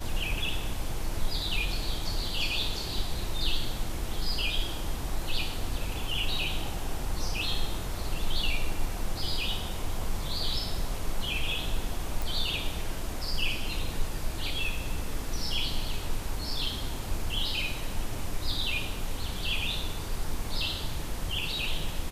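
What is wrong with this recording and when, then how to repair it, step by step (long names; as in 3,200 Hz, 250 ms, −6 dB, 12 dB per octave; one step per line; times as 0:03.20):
0:12.22: click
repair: click removal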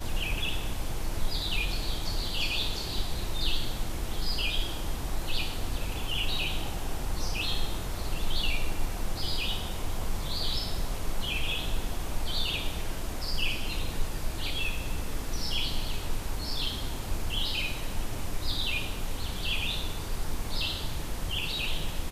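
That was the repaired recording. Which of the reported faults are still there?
none of them is left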